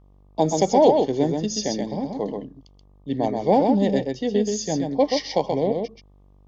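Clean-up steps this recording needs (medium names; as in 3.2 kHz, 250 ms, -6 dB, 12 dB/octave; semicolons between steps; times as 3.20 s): de-hum 48.7 Hz, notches 25; inverse comb 130 ms -4.5 dB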